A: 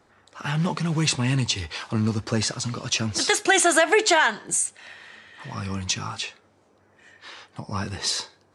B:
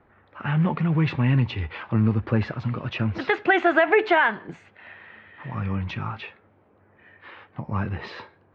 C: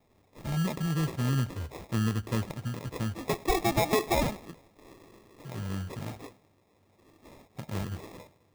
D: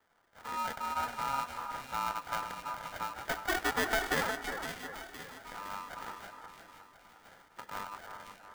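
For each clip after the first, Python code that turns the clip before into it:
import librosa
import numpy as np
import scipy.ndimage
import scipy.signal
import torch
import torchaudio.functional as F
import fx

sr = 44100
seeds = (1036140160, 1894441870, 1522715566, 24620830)

y1 = scipy.signal.sosfilt(scipy.signal.cheby2(4, 70, 9700.0, 'lowpass', fs=sr, output='sos'), x)
y1 = fx.low_shelf(y1, sr, hz=150.0, db=6.5)
y2 = fx.echo_feedback(y1, sr, ms=103, feedback_pct=55, wet_db=-23.0)
y2 = fx.sample_hold(y2, sr, seeds[0], rate_hz=1500.0, jitter_pct=0)
y2 = y2 * 10.0 ** (-7.5 / 20.0)
y3 = fx.low_shelf(y2, sr, hz=100.0, db=-10.5)
y3 = fx.echo_split(y3, sr, split_hz=790.0, low_ms=359, high_ms=513, feedback_pct=52, wet_db=-7.5)
y3 = y3 * np.sin(2.0 * np.pi * 1100.0 * np.arange(len(y3)) / sr)
y3 = y3 * 10.0 ** (-1.5 / 20.0)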